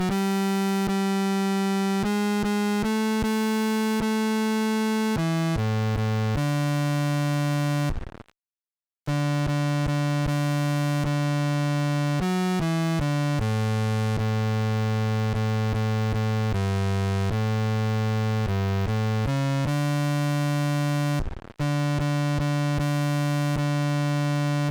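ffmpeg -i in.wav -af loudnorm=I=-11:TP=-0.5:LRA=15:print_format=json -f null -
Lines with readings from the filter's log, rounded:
"input_i" : "-24.9",
"input_tp" : "-19.2",
"input_lra" : "2.3",
"input_thresh" : "-35.0",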